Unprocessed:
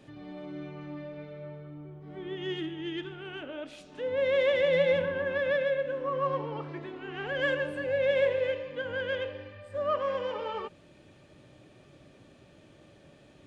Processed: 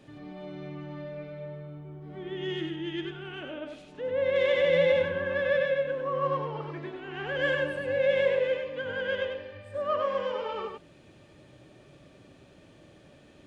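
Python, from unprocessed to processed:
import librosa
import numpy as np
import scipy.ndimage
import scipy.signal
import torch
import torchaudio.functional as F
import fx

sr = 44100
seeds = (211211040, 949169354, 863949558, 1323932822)

y = fx.high_shelf(x, sr, hz=2900.0, db=-8.5, at=(3.58, 4.36))
y = y + 10.0 ** (-4.0 / 20.0) * np.pad(y, (int(96 * sr / 1000.0), 0))[:len(y)]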